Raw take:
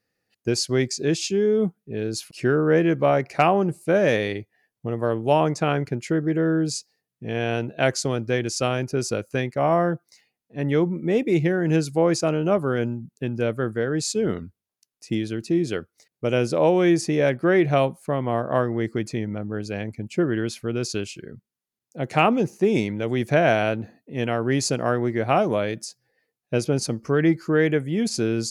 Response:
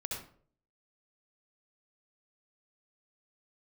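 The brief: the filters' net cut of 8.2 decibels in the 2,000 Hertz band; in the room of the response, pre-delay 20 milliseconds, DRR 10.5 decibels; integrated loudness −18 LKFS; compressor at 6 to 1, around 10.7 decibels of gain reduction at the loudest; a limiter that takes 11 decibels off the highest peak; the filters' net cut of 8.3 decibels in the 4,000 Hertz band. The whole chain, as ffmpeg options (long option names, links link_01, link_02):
-filter_complex "[0:a]equalizer=frequency=2000:width_type=o:gain=-9,equalizer=frequency=4000:width_type=o:gain=-9,acompressor=threshold=-27dB:ratio=6,alimiter=level_in=0.5dB:limit=-24dB:level=0:latency=1,volume=-0.5dB,asplit=2[link_01][link_02];[1:a]atrim=start_sample=2205,adelay=20[link_03];[link_02][link_03]afir=irnorm=-1:irlink=0,volume=-11.5dB[link_04];[link_01][link_04]amix=inputs=2:normalize=0,volume=16.5dB"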